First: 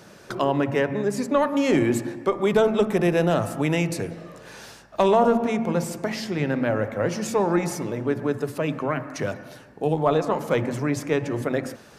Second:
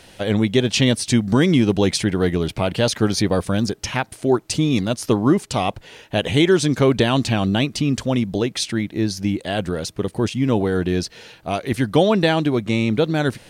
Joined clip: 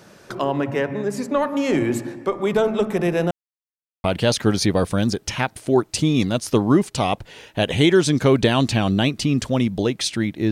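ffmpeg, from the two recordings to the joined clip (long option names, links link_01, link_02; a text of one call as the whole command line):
ffmpeg -i cue0.wav -i cue1.wav -filter_complex "[0:a]apad=whole_dur=10.51,atrim=end=10.51,asplit=2[link_01][link_02];[link_01]atrim=end=3.31,asetpts=PTS-STARTPTS,afade=type=out:start_time=3.306:duration=0.004:curve=hsin[link_03];[link_02]atrim=start=3.31:end=4.04,asetpts=PTS-STARTPTS,volume=0[link_04];[1:a]atrim=start=2.6:end=9.07,asetpts=PTS-STARTPTS,afade=type=in:duration=0.004:curve=hsin[link_05];[link_03][link_04][link_05]concat=n=3:v=0:a=1" out.wav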